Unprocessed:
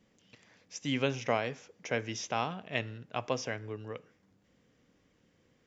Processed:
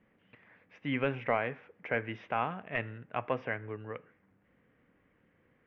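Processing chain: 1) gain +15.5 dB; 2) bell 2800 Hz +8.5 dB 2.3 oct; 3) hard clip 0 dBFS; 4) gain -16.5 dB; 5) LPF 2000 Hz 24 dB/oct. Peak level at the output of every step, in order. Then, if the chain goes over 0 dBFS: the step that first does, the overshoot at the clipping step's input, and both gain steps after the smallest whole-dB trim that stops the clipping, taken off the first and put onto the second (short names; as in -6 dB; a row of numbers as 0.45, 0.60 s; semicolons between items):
+1.0, +7.5, 0.0, -16.5, -15.5 dBFS; step 1, 7.5 dB; step 1 +7.5 dB, step 4 -8.5 dB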